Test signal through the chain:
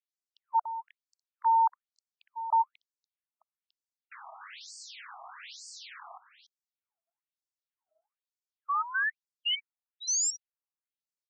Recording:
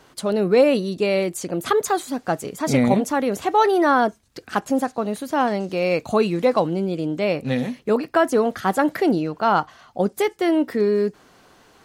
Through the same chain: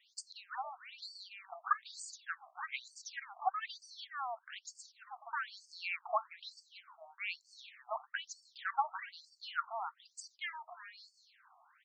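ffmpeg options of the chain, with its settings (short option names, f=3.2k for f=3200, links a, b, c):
-af "aecho=1:1:288:0.224,afftfilt=real='re*between(b*sr/1024,890*pow(6300/890,0.5+0.5*sin(2*PI*1.1*pts/sr))/1.41,890*pow(6300/890,0.5+0.5*sin(2*PI*1.1*pts/sr))*1.41)':imag='im*between(b*sr/1024,890*pow(6300/890,0.5+0.5*sin(2*PI*1.1*pts/sr))/1.41,890*pow(6300/890,0.5+0.5*sin(2*PI*1.1*pts/sr))*1.41)':win_size=1024:overlap=0.75,volume=-7.5dB"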